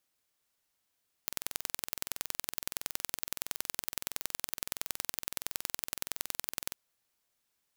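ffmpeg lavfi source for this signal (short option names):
-f lavfi -i "aevalsrc='0.596*eq(mod(n,2051),0)*(0.5+0.5*eq(mod(n,4102),0))':d=5.45:s=44100"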